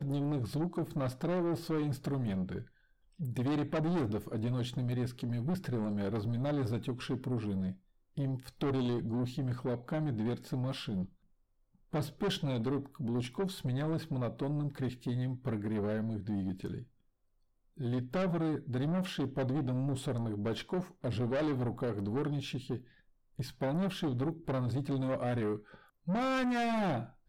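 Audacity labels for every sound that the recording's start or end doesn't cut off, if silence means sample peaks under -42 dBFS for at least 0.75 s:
11.930000	16.830000	sound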